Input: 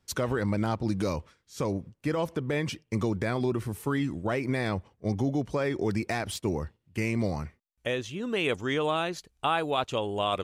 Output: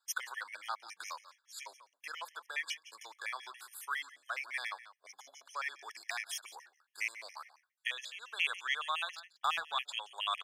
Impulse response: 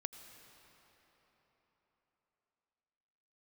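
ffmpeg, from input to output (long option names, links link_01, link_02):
-filter_complex "[0:a]highpass=frequency=1100:width=0.5412,highpass=frequency=1100:width=1.3066,asettb=1/sr,asplit=3[link_01][link_02][link_03];[link_01]atrim=end=9.154[link_04];[link_02]atrim=start=9.15:end=9.73,asetpts=PTS-STARTPTS,afade=type=in:duration=0.004:curve=qsin,afade=type=out:start_time=0.576:duration=0.004:curve=qsin,adynamicsmooth=sensitivity=5.5:basefreq=2800[link_05];[link_03]atrim=start=9.726[link_06];[link_04][link_05]acrossfade=duration=0.004:curve1=hsin:curve2=qsin[link_07];[link_07][link_06]acrossfade=duration=0.004:curve1=qsin:curve2=hsin,aecho=1:1:173:0.141,afftfilt=real='re*gt(sin(2*PI*7.2*pts/sr)*(1-2*mod(floor(b*sr/1024/1700),2)),0)':imag='im*gt(sin(2*PI*7.2*pts/sr)*(1-2*mod(floor(b*sr/1024/1700),2)),0)':win_size=1024:overlap=0.75,volume=1dB"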